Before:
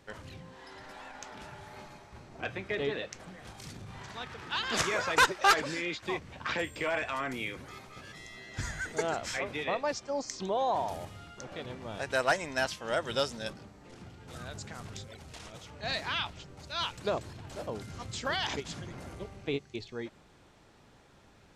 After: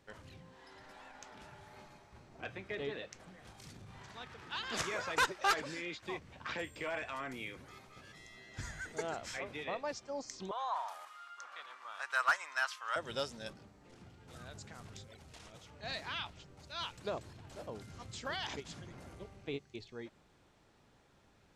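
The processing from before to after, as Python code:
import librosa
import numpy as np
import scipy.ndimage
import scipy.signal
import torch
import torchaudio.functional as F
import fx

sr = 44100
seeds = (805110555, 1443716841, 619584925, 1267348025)

y = fx.highpass_res(x, sr, hz=1200.0, q=4.2, at=(10.51, 12.96))
y = np.clip(y, -10.0 ** (-14.0 / 20.0), 10.0 ** (-14.0 / 20.0))
y = y * librosa.db_to_amplitude(-7.5)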